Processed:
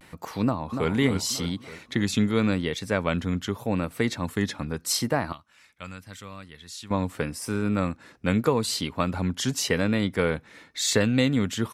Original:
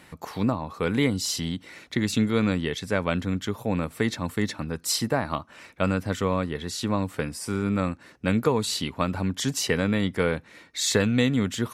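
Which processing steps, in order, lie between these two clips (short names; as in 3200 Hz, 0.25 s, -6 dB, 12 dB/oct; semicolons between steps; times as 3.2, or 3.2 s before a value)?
5.33–6.91 passive tone stack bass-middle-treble 5-5-5; vibrato 0.83 Hz 73 cents; 0.43–0.91 echo throw 0.29 s, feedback 50%, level -7 dB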